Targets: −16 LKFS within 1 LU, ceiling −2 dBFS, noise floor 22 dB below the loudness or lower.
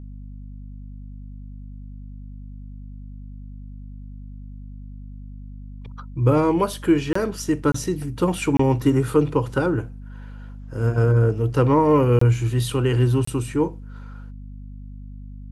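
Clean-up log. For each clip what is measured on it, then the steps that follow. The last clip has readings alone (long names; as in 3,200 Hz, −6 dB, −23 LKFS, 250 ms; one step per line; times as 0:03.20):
number of dropouts 5; longest dropout 24 ms; mains hum 50 Hz; hum harmonics up to 250 Hz; level of the hum −35 dBFS; integrated loudness −20.5 LKFS; sample peak −6.5 dBFS; target loudness −16.0 LKFS
→ repair the gap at 0:07.13/0:07.72/0:08.57/0:12.19/0:13.25, 24 ms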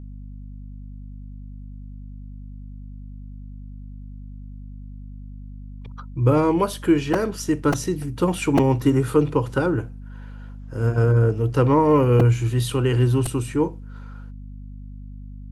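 number of dropouts 0; mains hum 50 Hz; hum harmonics up to 250 Hz; level of the hum −35 dBFS
→ hum removal 50 Hz, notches 5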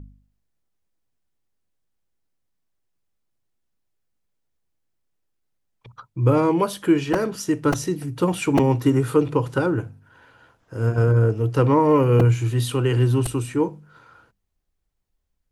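mains hum none found; integrated loudness −20.5 LKFS; sample peak −5.5 dBFS; target loudness −16.0 LKFS
→ level +4.5 dB
brickwall limiter −2 dBFS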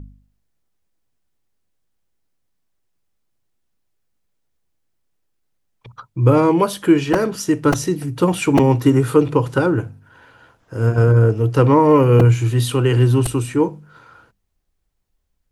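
integrated loudness −16.0 LKFS; sample peak −2.0 dBFS; background noise floor −70 dBFS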